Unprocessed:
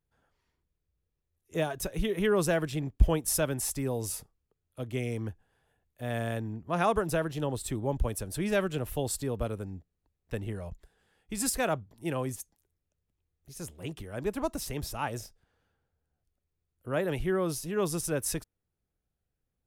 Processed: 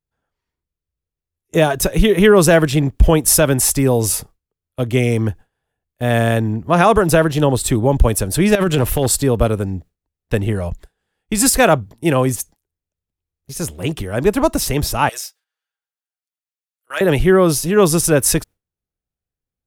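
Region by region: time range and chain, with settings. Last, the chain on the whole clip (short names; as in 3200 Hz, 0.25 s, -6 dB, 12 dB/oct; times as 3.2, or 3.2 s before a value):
8.55–9.06 negative-ratio compressor -32 dBFS + hard clip -24 dBFS
15.09–17.01 Bessel high-pass 2000 Hz + comb 6.3 ms, depth 54% + hard clip -29.5 dBFS
whole clip: gate with hold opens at -42 dBFS; maximiser +18 dB; gain -1 dB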